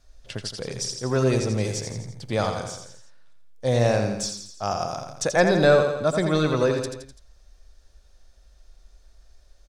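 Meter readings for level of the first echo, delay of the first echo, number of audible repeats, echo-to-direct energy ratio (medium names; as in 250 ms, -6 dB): -6.5 dB, 84 ms, 4, -5.0 dB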